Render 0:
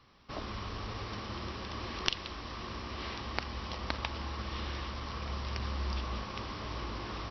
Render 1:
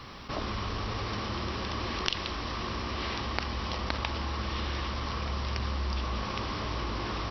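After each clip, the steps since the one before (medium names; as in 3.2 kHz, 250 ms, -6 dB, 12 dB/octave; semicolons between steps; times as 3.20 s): level flattener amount 50%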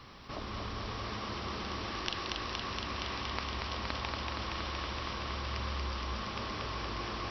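thinning echo 234 ms, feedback 84%, high-pass 200 Hz, level -3 dB; trim -7 dB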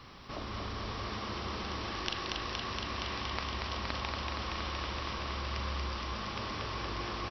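doubling 40 ms -10.5 dB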